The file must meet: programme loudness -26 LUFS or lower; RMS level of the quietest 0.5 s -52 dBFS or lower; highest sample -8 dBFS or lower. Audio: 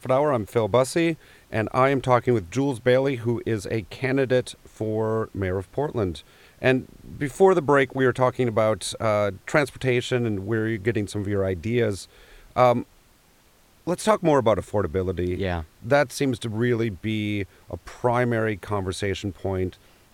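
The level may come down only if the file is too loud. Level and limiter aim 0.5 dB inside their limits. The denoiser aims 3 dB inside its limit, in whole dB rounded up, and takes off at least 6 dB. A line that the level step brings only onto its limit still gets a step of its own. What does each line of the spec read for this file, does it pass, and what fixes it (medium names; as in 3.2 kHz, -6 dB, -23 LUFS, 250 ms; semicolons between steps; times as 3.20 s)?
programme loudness -24.0 LUFS: fail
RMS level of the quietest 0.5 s -58 dBFS: pass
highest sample -5.0 dBFS: fail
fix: trim -2.5 dB; peak limiter -8.5 dBFS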